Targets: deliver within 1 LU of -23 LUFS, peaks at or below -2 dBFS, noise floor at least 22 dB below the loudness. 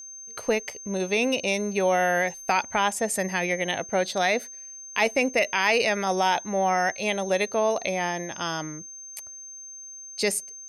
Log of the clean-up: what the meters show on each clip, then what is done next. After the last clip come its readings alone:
tick rate 40 per s; steady tone 6.3 kHz; tone level -39 dBFS; loudness -25.0 LUFS; peak level -9.5 dBFS; loudness target -23.0 LUFS
-> de-click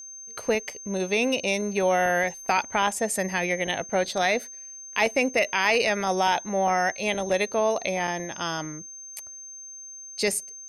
tick rate 0 per s; steady tone 6.3 kHz; tone level -39 dBFS
-> band-stop 6.3 kHz, Q 30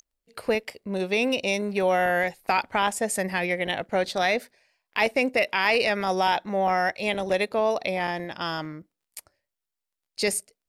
steady tone not found; loudness -25.5 LUFS; peak level -9.5 dBFS; loudness target -23.0 LUFS
-> trim +2.5 dB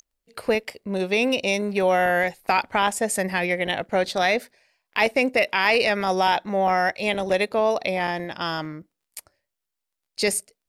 loudness -23.0 LUFS; peak level -7.0 dBFS; noise floor -83 dBFS

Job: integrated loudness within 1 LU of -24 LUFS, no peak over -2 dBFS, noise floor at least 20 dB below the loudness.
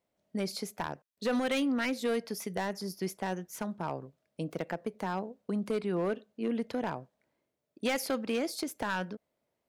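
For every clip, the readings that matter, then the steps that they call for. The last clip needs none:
clipped samples 1.4%; clipping level -24.5 dBFS; loudness -34.5 LUFS; peak level -24.5 dBFS; loudness target -24.0 LUFS
-> clip repair -24.5 dBFS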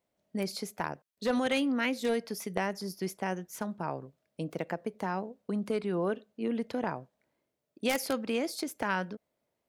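clipped samples 0.0%; loudness -33.5 LUFS; peak level -15.5 dBFS; loudness target -24.0 LUFS
-> trim +9.5 dB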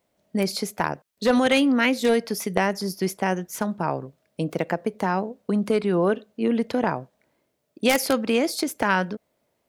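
loudness -24.0 LUFS; peak level -6.0 dBFS; noise floor -73 dBFS

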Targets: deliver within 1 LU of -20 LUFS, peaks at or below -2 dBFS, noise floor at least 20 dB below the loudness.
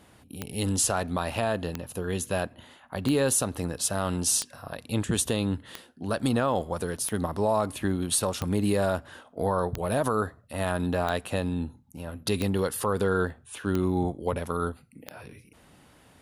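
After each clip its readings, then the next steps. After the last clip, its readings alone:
clicks found 12; loudness -28.0 LUFS; peak level -12.5 dBFS; loudness target -20.0 LUFS
-> de-click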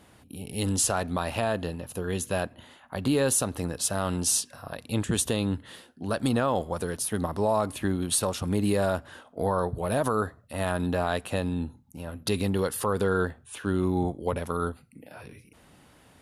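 clicks found 0; loudness -28.0 LUFS; peak level -13.0 dBFS; loudness target -20.0 LUFS
-> trim +8 dB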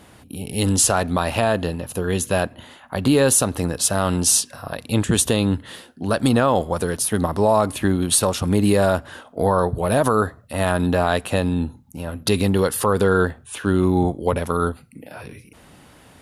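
loudness -20.0 LUFS; peak level -5.0 dBFS; noise floor -49 dBFS

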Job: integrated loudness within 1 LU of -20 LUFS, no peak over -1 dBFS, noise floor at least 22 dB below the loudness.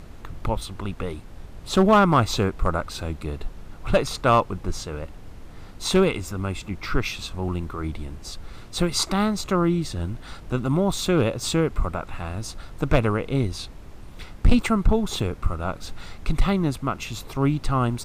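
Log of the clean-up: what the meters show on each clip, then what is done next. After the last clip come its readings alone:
clipped samples 0.8%; clipping level -9.5 dBFS; noise floor -42 dBFS; noise floor target -47 dBFS; loudness -24.5 LUFS; peak level -9.5 dBFS; loudness target -20.0 LUFS
-> clip repair -9.5 dBFS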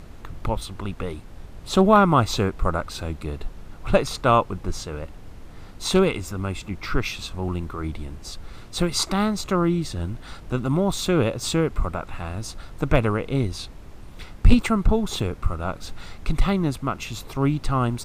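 clipped samples 0.0%; noise floor -42 dBFS; noise floor target -46 dBFS
-> noise print and reduce 6 dB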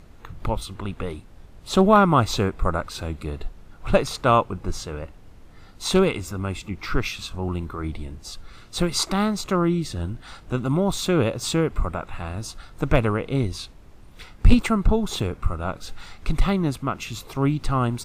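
noise floor -47 dBFS; loudness -24.0 LUFS; peak level -2.0 dBFS; loudness target -20.0 LUFS
-> trim +4 dB; peak limiter -1 dBFS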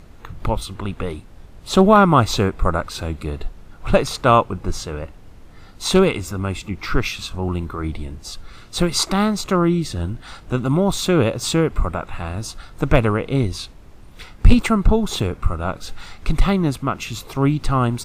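loudness -20.5 LUFS; peak level -1.0 dBFS; noise floor -43 dBFS

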